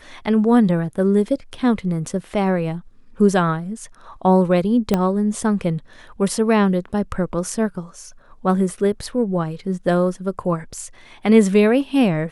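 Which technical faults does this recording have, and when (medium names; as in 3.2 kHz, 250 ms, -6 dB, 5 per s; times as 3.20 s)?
4.94 s: pop -5 dBFS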